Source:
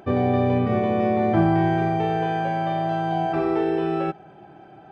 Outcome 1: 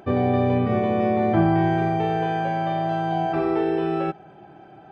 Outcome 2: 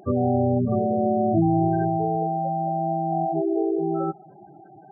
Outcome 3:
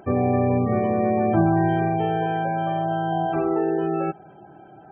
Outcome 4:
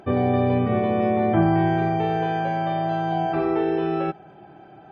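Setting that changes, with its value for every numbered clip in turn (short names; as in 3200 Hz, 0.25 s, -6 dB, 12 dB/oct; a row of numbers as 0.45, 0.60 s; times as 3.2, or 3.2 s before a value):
spectral gate, under each frame's peak: -55, -10, -25, -45 dB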